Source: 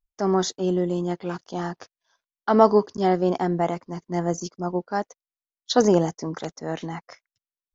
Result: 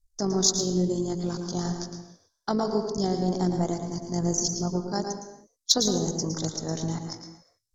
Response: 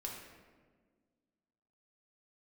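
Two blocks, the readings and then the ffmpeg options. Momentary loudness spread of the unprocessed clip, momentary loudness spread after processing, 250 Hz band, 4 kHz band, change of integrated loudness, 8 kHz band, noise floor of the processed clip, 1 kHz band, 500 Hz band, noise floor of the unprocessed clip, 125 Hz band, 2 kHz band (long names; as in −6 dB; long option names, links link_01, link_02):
15 LU, 16 LU, −2.5 dB, +6.5 dB, −3.0 dB, can't be measured, −76 dBFS, −9.0 dB, −7.0 dB, below −85 dBFS, +0.5 dB, −10.0 dB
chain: -filter_complex "[0:a]aemphasis=mode=reproduction:type=riaa,acompressor=threshold=-17dB:ratio=6,aexciter=amount=15.8:drive=9:freq=4300,tremolo=f=49:d=0.462,asplit=2[link_01][link_02];[1:a]atrim=start_sample=2205,afade=type=out:start_time=0.38:duration=0.01,atrim=end_sample=17199,adelay=111[link_03];[link_02][link_03]afir=irnorm=-1:irlink=0,volume=-4dB[link_04];[link_01][link_04]amix=inputs=2:normalize=0,volume=-4.5dB"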